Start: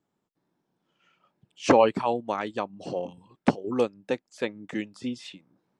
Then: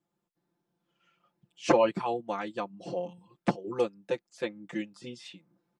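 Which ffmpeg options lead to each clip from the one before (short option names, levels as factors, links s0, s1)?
-af "aecho=1:1:5.8:0.98,volume=0.447"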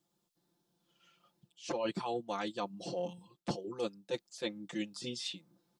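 -af "highshelf=f=2900:t=q:w=1.5:g=7,areverse,acompressor=threshold=0.0224:ratio=16,areverse,volume=1.12"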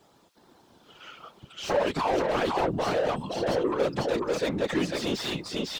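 -filter_complex "[0:a]aecho=1:1:499:0.531,asplit=2[s0][s1];[s1]highpass=f=720:p=1,volume=39.8,asoftclip=type=tanh:threshold=0.1[s2];[s0][s2]amix=inputs=2:normalize=0,lowpass=f=1300:p=1,volume=0.501,afftfilt=real='hypot(re,im)*cos(2*PI*random(0))':imag='hypot(re,im)*sin(2*PI*random(1))':win_size=512:overlap=0.75,volume=2.66"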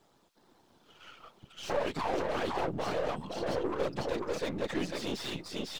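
-af "aeval=exprs='if(lt(val(0),0),0.447*val(0),val(0))':c=same,volume=0.631"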